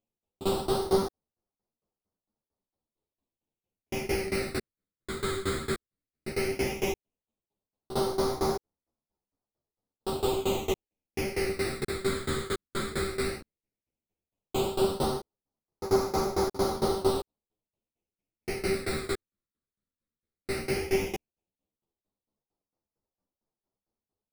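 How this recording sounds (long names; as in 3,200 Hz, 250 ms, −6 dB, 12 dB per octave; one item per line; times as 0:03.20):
aliases and images of a low sample rate 1,700 Hz, jitter 20%
phaser sweep stages 8, 0.14 Hz, lowest notch 800–2,800 Hz
tremolo saw down 4.4 Hz, depth 95%
a shimmering, thickened sound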